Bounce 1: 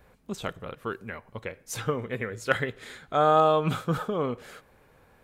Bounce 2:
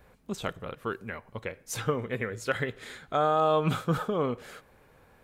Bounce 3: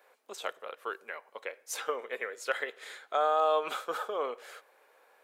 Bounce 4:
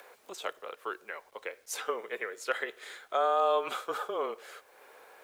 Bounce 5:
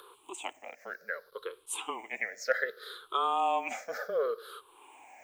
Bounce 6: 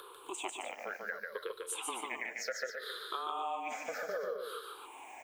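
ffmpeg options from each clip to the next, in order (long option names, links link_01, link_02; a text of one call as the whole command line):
ffmpeg -i in.wav -af "alimiter=limit=-15dB:level=0:latency=1:release=94" out.wav
ffmpeg -i in.wav -af "highpass=frequency=460:width=0.5412,highpass=frequency=460:width=1.3066,volume=-1.5dB" out.wav
ffmpeg -i in.wav -af "acompressor=mode=upward:threshold=-45dB:ratio=2.5,afreqshift=-21,acrusher=bits=10:mix=0:aa=0.000001" out.wav
ffmpeg -i in.wav -af "afftfilt=real='re*pow(10,23/40*sin(2*PI*(0.63*log(max(b,1)*sr/1024/100)/log(2)-(-0.66)*(pts-256)/sr)))':imag='im*pow(10,23/40*sin(2*PI*(0.63*log(max(b,1)*sr/1024/100)/log(2)-(-0.66)*(pts-256)/sr)))':win_size=1024:overlap=0.75,volume=-4.5dB" out.wav
ffmpeg -i in.wav -filter_complex "[0:a]acompressor=threshold=-39dB:ratio=10,asplit=2[link_01][link_02];[link_02]aecho=0:1:145.8|265.3:0.708|0.355[link_03];[link_01][link_03]amix=inputs=2:normalize=0,volume=2.5dB" out.wav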